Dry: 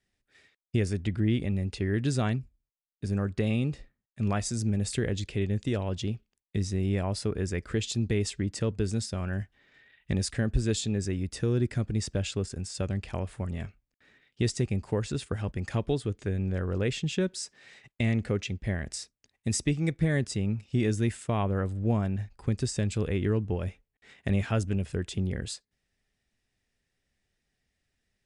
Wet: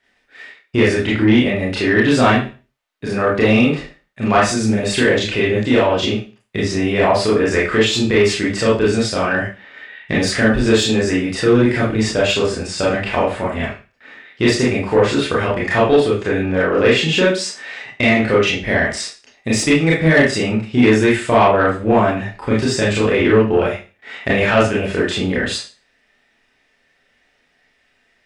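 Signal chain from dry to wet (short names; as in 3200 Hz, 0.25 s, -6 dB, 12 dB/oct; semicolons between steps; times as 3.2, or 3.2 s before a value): tone controls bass -4 dB, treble -8 dB; Schroeder reverb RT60 0.33 s, combs from 25 ms, DRR -6.5 dB; overdrive pedal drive 15 dB, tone 3200 Hz, clips at -9.5 dBFS; gain +8 dB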